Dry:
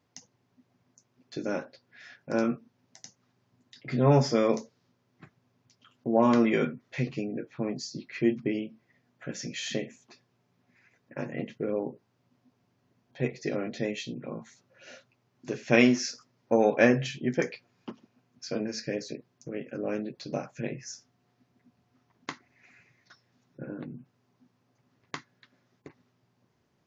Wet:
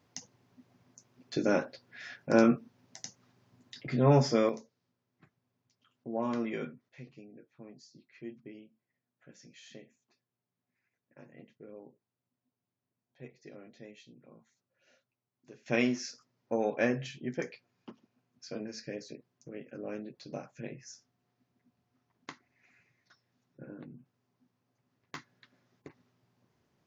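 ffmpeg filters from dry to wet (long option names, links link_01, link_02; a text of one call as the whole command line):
ffmpeg -i in.wav -af "asetnsamples=nb_out_samples=441:pad=0,asendcmd='3.87 volume volume -2dB;4.49 volume volume -11dB;6.89 volume volume -19dB;15.66 volume volume -8dB;25.15 volume volume -2dB',volume=4dB" out.wav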